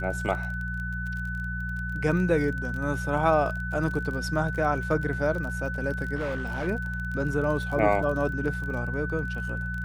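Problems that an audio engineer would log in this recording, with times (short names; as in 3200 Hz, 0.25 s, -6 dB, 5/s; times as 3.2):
crackle 32/s -33 dBFS
hum 60 Hz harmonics 3 -33 dBFS
tone 1500 Hz -33 dBFS
6.15–6.68 clipped -26 dBFS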